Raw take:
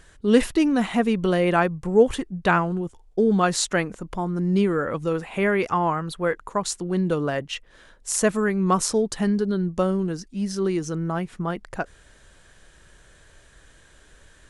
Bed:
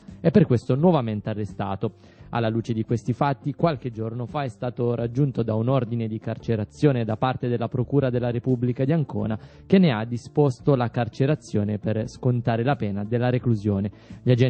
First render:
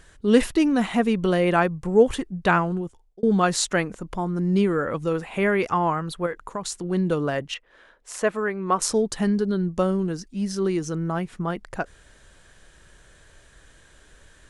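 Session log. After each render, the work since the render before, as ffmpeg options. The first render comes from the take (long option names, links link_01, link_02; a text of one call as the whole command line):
ffmpeg -i in.wav -filter_complex "[0:a]asettb=1/sr,asplit=3[link_01][link_02][link_03];[link_01]atrim=end=6.264[link_04];[link_02]atrim=start=6.26:end=6.84,asetpts=PTS-STARTPTS,afade=type=in:duration=0.004:curve=qsin,afade=type=out:start_time=0.576:duration=0.004:curve=qsin,acompressor=threshold=-27dB:ratio=2.5:attack=3.2:release=140:knee=1:detection=peak[link_05];[link_03]atrim=start=6.836[link_06];[link_04][link_05]acrossfade=duration=0.004:curve1=hsin:curve2=qsin[link_07];[link_07][link_06]acrossfade=duration=0.004:curve1=qsin:curve2=hsin,asettb=1/sr,asplit=3[link_08][link_09][link_10];[link_08]atrim=end=7.544[link_11];[link_09]atrim=start=7.54:end=8.82,asetpts=PTS-STARTPTS,afade=type=in:duration=0.004:curve=qsin,afade=type=out:start_time=1.276:duration=0.004:curve=qsin,bass=frequency=250:gain=-13,treble=frequency=4000:gain=-13[link_12];[link_10]atrim=start=8.816[link_13];[link_11][link_12]acrossfade=duration=0.004:curve1=hsin:curve2=qsin[link_14];[link_14][link_13]acrossfade=duration=0.004:curve1=qsin:curve2=hsin,asplit=2[link_15][link_16];[link_15]atrim=end=3.23,asetpts=PTS-STARTPTS,afade=type=out:start_time=2.75:duration=0.48[link_17];[link_16]atrim=start=3.23,asetpts=PTS-STARTPTS,afade=type=in:duration=0.004:curve=hsin[link_18];[link_17][link_18]concat=n=2:v=0:a=1" out.wav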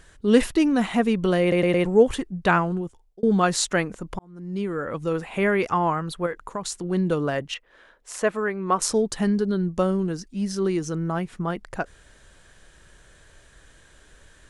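ffmpeg -i in.wav -filter_complex "[0:a]asplit=6[link_01][link_02][link_03][link_04][link_05][link_06];[link_01]atrim=end=1.522[link_07];[link_02]atrim=start=1.408:end=1.522[link_08];[link_03]atrim=start=1.408:end=1.522[link_09];[link_04]atrim=start=1.408:end=1.522[link_10];[link_05]atrim=start=1.848:end=4.19,asetpts=PTS-STARTPTS,afade=type=out:start_time=2.338:duration=0.004:curve=hsin[link_11];[link_06]atrim=start=4.19,asetpts=PTS-STARTPTS,afade=type=in:duration=1.01[link_12];[link_07][link_08]acrossfade=duration=0.004:curve1=hsin:curve2=hsin[link_13];[link_13][link_09]acrossfade=duration=0.004:curve1=hsin:curve2=hsin[link_14];[link_14][link_10]acrossfade=duration=0.004:curve1=hsin:curve2=hsin[link_15];[link_11][link_12]concat=n=2:v=0:a=1[link_16];[link_15][link_16]acrossfade=duration=0.004:curve1=hsin:curve2=hsin" out.wav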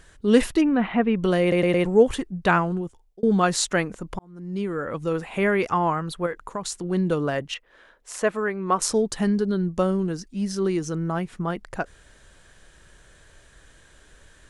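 ffmpeg -i in.wav -filter_complex "[0:a]asplit=3[link_01][link_02][link_03];[link_01]afade=type=out:start_time=0.6:duration=0.02[link_04];[link_02]lowpass=frequency=2800:width=0.5412,lowpass=frequency=2800:width=1.3066,afade=type=in:start_time=0.6:duration=0.02,afade=type=out:start_time=1.22:duration=0.02[link_05];[link_03]afade=type=in:start_time=1.22:duration=0.02[link_06];[link_04][link_05][link_06]amix=inputs=3:normalize=0" out.wav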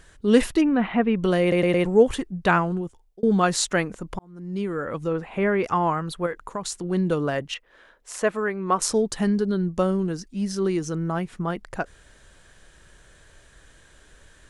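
ffmpeg -i in.wav -filter_complex "[0:a]asettb=1/sr,asplit=3[link_01][link_02][link_03];[link_01]atrim=end=5.074[link_04];[link_02]atrim=start=5.07:end=5.64,asetpts=PTS-STARTPTS,afade=type=in:duration=0.004:curve=qsin,afade=type=out:start_time=0.566:duration=0.004:curve=qsin,lowpass=frequency=1800:poles=1[link_05];[link_03]atrim=start=5.636[link_06];[link_04][link_05]acrossfade=duration=0.004:curve1=hsin:curve2=qsin[link_07];[link_07][link_06]acrossfade=duration=0.004:curve1=qsin:curve2=hsin" out.wav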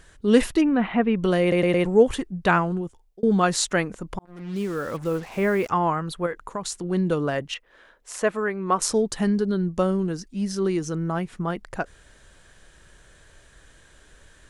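ffmpeg -i in.wav -filter_complex "[0:a]asettb=1/sr,asplit=3[link_01][link_02][link_03];[link_01]atrim=end=4.254[link_04];[link_02]atrim=start=4.25:end=5.69,asetpts=PTS-STARTPTS,afade=type=in:duration=0.004:curve=qsin,afade=type=out:start_time=1.436:duration=0.004:curve=qsin,acrusher=bits=6:mix=0:aa=0.5[link_05];[link_03]atrim=start=5.686[link_06];[link_04][link_05]acrossfade=duration=0.004:curve1=hsin:curve2=qsin[link_07];[link_07][link_06]acrossfade=duration=0.004:curve1=qsin:curve2=hsin" out.wav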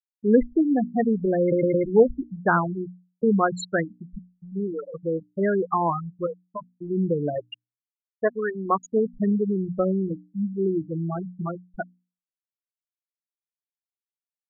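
ffmpeg -i in.wav -af "afftfilt=real='re*gte(hypot(re,im),0.224)':imag='im*gte(hypot(re,im),0.224)':win_size=1024:overlap=0.75,bandreject=frequency=60:width_type=h:width=6,bandreject=frequency=120:width_type=h:width=6,bandreject=frequency=180:width_type=h:width=6,bandreject=frequency=240:width_type=h:width=6,bandreject=frequency=300:width_type=h:width=6" out.wav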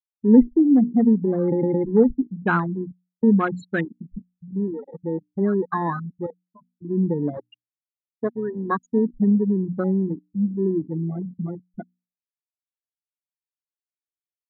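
ffmpeg -i in.wav -af "afwtdn=0.0447,equalizer=frequency=250:width_type=o:width=0.67:gain=9,equalizer=frequency=630:width_type=o:width=0.67:gain=-9,equalizer=frequency=2500:width_type=o:width=0.67:gain=5" out.wav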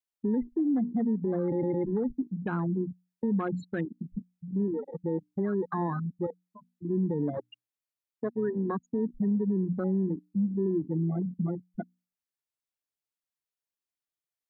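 ffmpeg -i in.wav -filter_complex "[0:a]acrossover=split=110|780[link_01][link_02][link_03];[link_01]acompressor=threshold=-47dB:ratio=4[link_04];[link_02]acompressor=threshold=-25dB:ratio=4[link_05];[link_03]acompressor=threshold=-39dB:ratio=4[link_06];[link_04][link_05][link_06]amix=inputs=3:normalize=0,alimiter=limit=-21.5dB:level=0:latency=1:release=29" out.wav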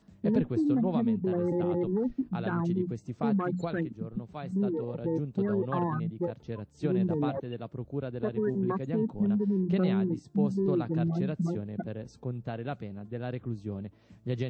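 ffmpeg -i in.wav -i bed.wav -filter_complex "[1:a]volume=-13.5dB[link_01];[0:a][link_01]amix=inputs=2:normalize=0" out.wav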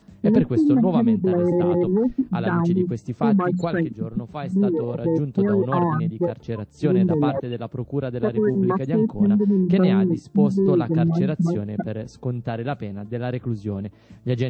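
ffmpeg -i in.wav -af "volume=9dB" out.wav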